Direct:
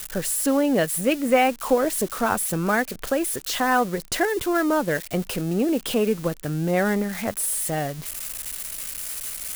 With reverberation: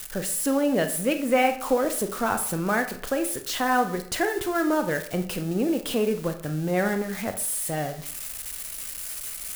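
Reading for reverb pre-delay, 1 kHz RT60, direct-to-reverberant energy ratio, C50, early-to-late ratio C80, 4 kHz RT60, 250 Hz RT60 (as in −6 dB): 25 ms, 0.55 s, 7.5 dB, 10.5 dB, 14.0 dB, 0.40 s, 0.60 s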